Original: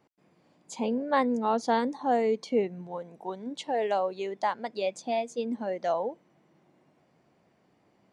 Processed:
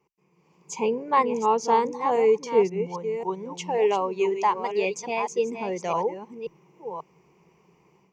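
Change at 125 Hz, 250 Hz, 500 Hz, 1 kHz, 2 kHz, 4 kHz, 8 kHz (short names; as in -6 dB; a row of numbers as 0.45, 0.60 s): +6.0, -1.0, +5.5, +5.5, +3.5, +2.0, +8.5 dB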